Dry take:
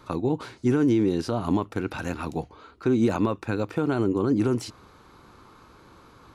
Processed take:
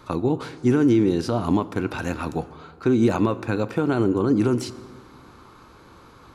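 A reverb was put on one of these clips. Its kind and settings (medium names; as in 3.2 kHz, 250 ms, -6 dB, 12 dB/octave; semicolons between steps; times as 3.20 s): plate-style reverb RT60 2 s, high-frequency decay 0.55×, DRR 14.5 dB; trim +3 dB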